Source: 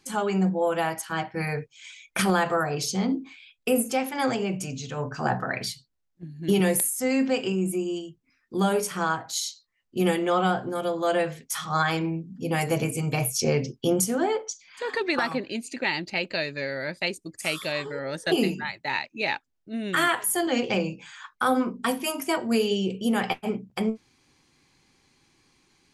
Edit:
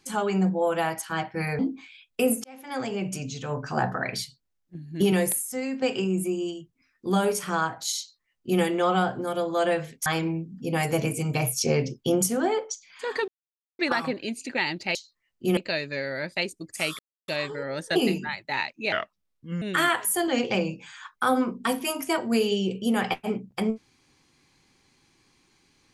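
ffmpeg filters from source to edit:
-filter_complex "[0:a]asplit=11[a][b][c][d][e][f][g][h][i][j][k];[a]atrim=end=1.592[l];[b]atrim=start=3.068:end=3.92,asetpts=PTS-STARTPTS,afade=t=out:st=0.848:d=0.004:c=hsin[m];[c]atrim=start=3.92:end=7.3,asetpts=PTS-STARTPTS,afade=t=in:d=0.68,afade=t=out:st=2.64:d=0.74:silence=0.316228[n];[d]atrim=start=7.3:end=11.542,asetpts=PTS-STARTPTS,afade=t=in:d=0.004:c=hsin:silence=0.316228[o];[e]atrim=start=11.838:end=15.06,asetpts=PTS-STARTPTS,afade=t=out:st=3.218:d=0.004:c=hsin,apad=pad_dur=0.51[p];[f]atrim=start=15.06:end=16.222,asetpts=PTS-STARTPTS,afade=t=in:d=0.004:c=hsin[q];[g]atrim=start=9.468:end=10.092[r];[h]atrim=start=16.218:end=17.64,asetpts=PTS-STARTPTS,afade=t=out:st=1.418:d=0.004:c=hsin,apad=pad_dur=0.29[s];[i]atrim=start=17.64:end=19.284,asetpts=PTS-STARTPTS,afade=t=in:d=0.004:c=hsin[t];[j]atrim=start=19.28:end=19.81,asetpts=PTS-STARTPTS,asetrate=33516,aresample=44100[u];[k]atrim=start=19.806[v];[m][n][o]concat=n=3:v=0:a=1[w];[l][w]acrossfade=d=0.004:c1=hsin:c2=hsin[x];[p][q]concat=n=2:v=0:a=1[y];[x][y]acrossfade=d=0.004:c1=hsin:c2=hsin[z];[z][r]acrossfade=d=0.004:c1=hsin:c2=hsin[aa];[s][t]concat=n=2:v=0:a=1[ab];[aa][ab]acrossfade=d=0.004:c1=hsin:c2=hsin[ac];[ac][u]acrossfade=d=0.004:c1=hsin:c2=hsin[ad];[ad][v]acrossfade=d=0.004:c1=hsin:c2=hsin"

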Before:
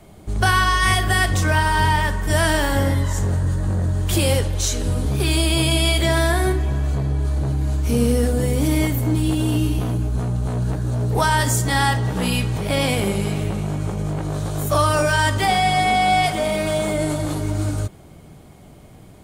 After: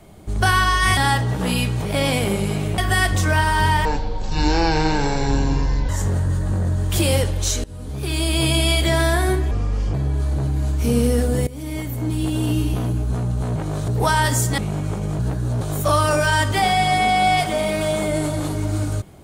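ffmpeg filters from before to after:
-filter_complex "[0:a]asplit=14[a][b][c][d][e][f][g][h][i][j][k][l][m][n];[a]atrim=end=0.972[o];[b]atrim=start=11.728:end=13.542[p];[c]atrim=start=0.968:end=2.044[q];[d]atrim=start=2.04:end=3.06,asetpts=PTS-STARTPTS,asetrate=22050,aresample=44100[r];[e]atrim=start=3.056:end=4.81,asetpts=PTS-STARTPTS,afade=t=out:st=1.75:d=0.004:c=hsin:silence=0.0841395[s];[f]atrim=start=4.81:end=6.684,asetpts=PTS-STARTPTS,afade=t=in:d=0.82:silence=0.0841395[t];[g]atrim=start=6.68:end=6.99,asetpts=PTS-STARTPTS,asetrate=31752,aresample=44100[u];[h]atrim=start=6.986:end=8.52,asetpts=PTS-STARTPTS,afade=t=out:st=1.53:d=0.004:c=hsin:silence=0.11885[v];[i]atrim=start=8.52:end=10.612,asetpts=PTS-STARTPTS,afade=t=in:d=1.49:c=qsin:silence=0.11885[w];[j]atrim=start=14.148:end=14.472[x];[k]atrim=start=11.028:end=11.732[y];[l]atrim=start=13.538:end=14.152[z];[m]atrim=start=10.608:end=11.032[aa];[n]atrim=start=14.468[ab];[o][p]acrossfade=d=0.004:c1=hsin:c2=hsin[ac];[ac][q]acrossfade=d=0.004:c1=hsin:c2=hsin[ad];[ad][r]acrossfade=d=0.004:c1=hsin:c2=hsin[ae];[s][t]concat=n=2:v=0:a=1[af];[ae][af]acrossfade=d=0.004:c1=hsin:c2=hsin[ag];[ag][u]acrossfade=d=0.004:c1=hsin:c2=hsin[ah];[v][w]concat=n=2:v=0:a=1[ai];[ah][ai]acrossfade=d=0.004:c1=hsin:c2=hsin[aj];[aj][x]acrossfade=d=0.004:c1=hsin:c2=hsin[ak];[ak][y]acrossfade=d=0.004:c1=hsin:c2=hsin[al];[al][z]acrossfade=d=0.004:c1=hsin:c2=hsin[am];[am][aa]acrossfade=d=0.004:c1=hsin:c2=hsin[an];[an][ab]acrossfade=d=0.004:c1=hsin:c2=hsin"

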